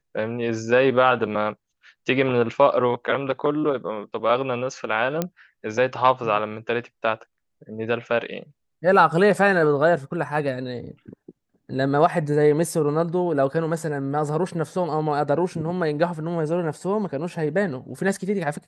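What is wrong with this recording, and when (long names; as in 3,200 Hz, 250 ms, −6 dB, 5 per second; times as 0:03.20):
0:05.22: click −9 dBFS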